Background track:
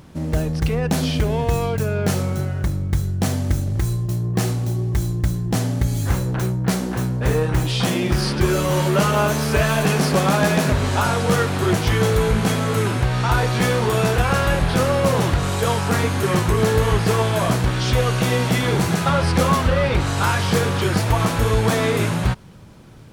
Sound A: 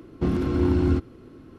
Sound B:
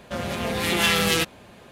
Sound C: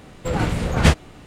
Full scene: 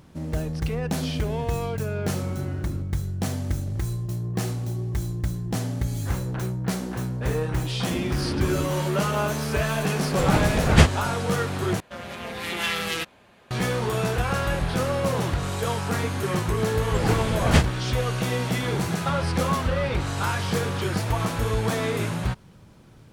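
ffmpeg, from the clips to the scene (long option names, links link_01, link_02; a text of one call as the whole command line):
ffmpeg -i bed.wav -i cue0.wav -i cue1.wav -i cue2.wav -filter_complex "[1:a]asplit=2[link_01][link_02];[3:a]asplit=2[link_03][link_04];[0:a]volume=-6.5dB[link_05];[2:a]equalizer=frequency=1600:width=0.44:gain=5.5[link_06];[link_05]asplit=2[link_07][link_08];[link_07]atrim=end=11.804[link_09];[link_06]atrim=end=1.71,asetpts=PTS-STARTPTS,volume=-10dB[link_10];[link_08]atrim=start=13.506[link_11];[link_01]atrim=end=1.58,asetpts=PTS-STARTPTS,volume=-16.5dB,afade=type=in:duration=0.004:curve=hsin,afade=type=out:start_time=1.576:duration=0.004:curve=hsin,adelay=1830[link_12];[link_02]atrim=end=1.58,asetpts=PTS-STARTPTS,volume=-8dB,afade=type=in:duration=0.004:curve=hsin,afade=type=out:start_time=1.576:duration=0.004:curve=hsin,adelay=7690[link_13];[link_03]atrim=end=1.26,asetpts=PTS-STARTPTS,volume=-0.5dB,afade=type=in:duration=0.004:curve=hsin,afade=type=out:start_time=1.256:duration=0.004:curve=hsin,adelay=9930[link_14];[link_04]atrim=end=1.26,asetpts=PTS-STARTPTS,volume=-3.5dB,afade=type=in:duration=0.004:curve=hsin,afade=type=out:start_time=1.256:duration=0.004:curve=hsin,adelay=16690[link_15];[link_09][link_10]acrossfade=duration=0.004:curve1=hsin:curve2=hsin[link_16];[link_16][link_11]acrossfade=duration=0.004:curve1=hsin:curve2=hsin[link_17];[link_17][link_12][link_13][link_14][link_15]amix=inputs=5:normalize=0" out.wav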